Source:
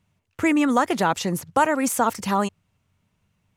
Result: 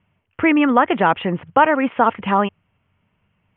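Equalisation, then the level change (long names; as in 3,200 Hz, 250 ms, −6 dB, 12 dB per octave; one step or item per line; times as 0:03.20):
Butterworth low-pass 3,200 Hz 96 dB per octave
low-shelf EQ 240 Hz −5 dB
+6.0 dB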